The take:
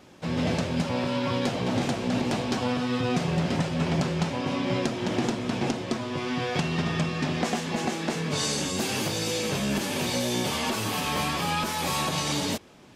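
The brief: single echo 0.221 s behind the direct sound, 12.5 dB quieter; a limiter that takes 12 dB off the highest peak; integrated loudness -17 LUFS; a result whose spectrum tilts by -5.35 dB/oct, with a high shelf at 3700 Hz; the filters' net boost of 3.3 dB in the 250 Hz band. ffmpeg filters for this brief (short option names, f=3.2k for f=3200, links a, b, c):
-af "equalizer=f=250:t=o:g=4,highshelf=f=3.7k:g=-5.5,alimiter=limit=-23dB:level=0:latency=1,aecho=1:1:221:0.237,volume=14dB"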